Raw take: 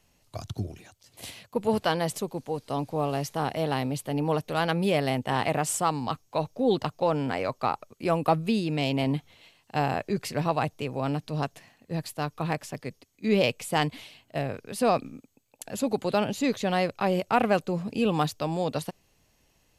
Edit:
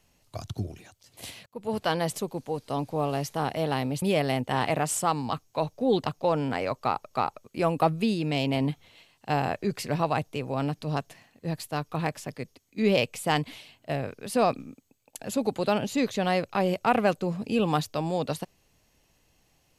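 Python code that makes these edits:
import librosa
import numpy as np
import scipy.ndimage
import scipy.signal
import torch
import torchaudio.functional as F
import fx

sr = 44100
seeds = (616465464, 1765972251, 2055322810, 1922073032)

y = fx.edit(x, sr, fx.fade_in_from(start_s=1.46, length_s=0.49, floor_db=-21.5),
    fx.cut(start_s=4.02, length_s=0.78),
    fx.repeat(start_s=7.57, length_s=0.32, count=2), tone=tone)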